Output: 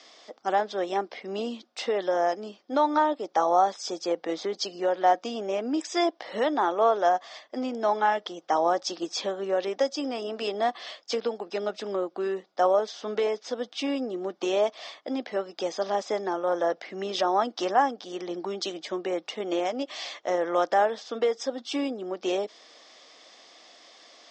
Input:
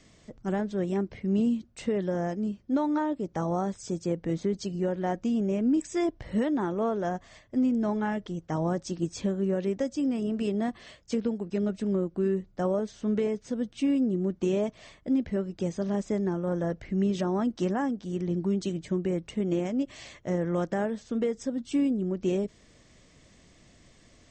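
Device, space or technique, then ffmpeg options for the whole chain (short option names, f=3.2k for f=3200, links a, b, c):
phone speaker on a table: -af "highpass=f=370:w=0.5412,highpass=f=370:w=1.3066,equalizer=f=390:t=q:w=4:g=-5,equalizer=f=770:t=q:w=4:g=8,equalizer=f=1.2k:t=q:w=4:g=5,equalizer=f=3.5k:t=q:w=4:g=7,equalizer=f=5k:t=q:w=4:g=8,lowpass=f=6.5k:w=0.5412,lowpass=f=6.5k:w=1.3066,volume=6dB"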